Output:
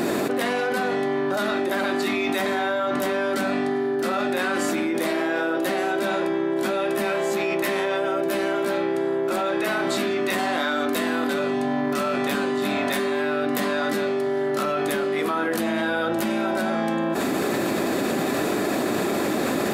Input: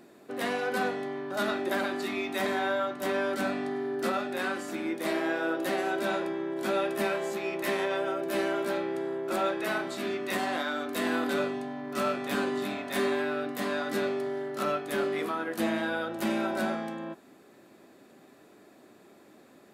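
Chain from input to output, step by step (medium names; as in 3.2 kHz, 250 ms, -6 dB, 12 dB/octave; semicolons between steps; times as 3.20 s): level flattener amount 100%; trim +2 dB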